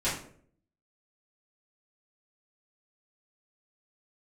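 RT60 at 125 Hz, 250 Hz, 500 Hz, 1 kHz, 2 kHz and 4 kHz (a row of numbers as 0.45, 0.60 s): 0.75, 0.70, 0.65, 0.45, 0.45, 0.35 s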